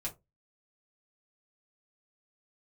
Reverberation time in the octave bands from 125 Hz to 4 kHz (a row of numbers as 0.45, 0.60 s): 0.30, 0.25, 0.25, 0.20, 0.15, 0.10 s